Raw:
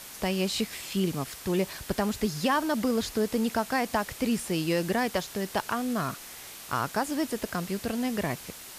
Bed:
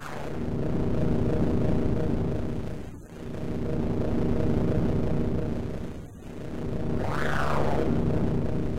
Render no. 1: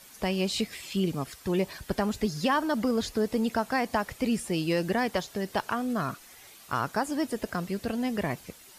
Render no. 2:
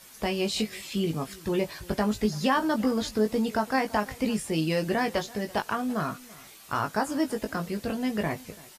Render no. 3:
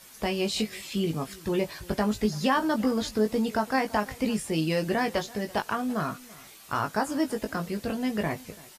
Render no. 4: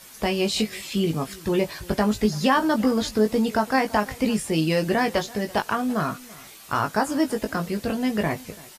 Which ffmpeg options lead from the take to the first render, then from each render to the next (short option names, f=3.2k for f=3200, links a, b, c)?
-af "afftdn=nr=10:nf=-44"
-filter_complex "[0:a]asplit=2[a][b];[b]adelay=19,volume=-5.5dB[c];[a][c]amix=inputs=2:normalize=0,aecho=1:1:335:0.0794"
-af anull
-af "volume=4.5dB"